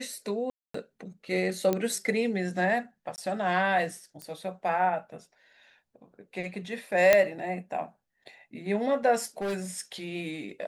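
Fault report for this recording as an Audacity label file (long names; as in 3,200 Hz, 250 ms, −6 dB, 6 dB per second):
0.500000	0.740000	drop-out 244 ms
1.730000	1.730000	click −13 dBFS
3.160000	3.180000	drop-out 19 ms
4.220000	4.220000	click −24 dBFS
7.130000	7.130000	click −6 dBFS
9.230000	9.810000	clipping −27.5 dBFS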